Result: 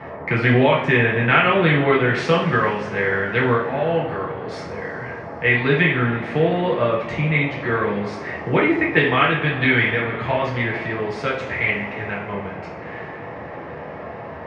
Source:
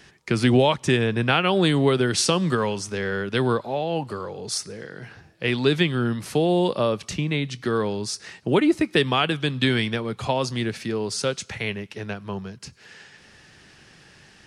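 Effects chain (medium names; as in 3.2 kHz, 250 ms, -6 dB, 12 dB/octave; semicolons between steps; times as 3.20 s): band noise 78–890 Hz -37 dBFS; resonant low-pass 2 kHz, resonance Q 3.8; two-slope reverb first 0.47 s, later 4.4 s, from -21 dB, DRR -4.5 dB; trim -3.5 dB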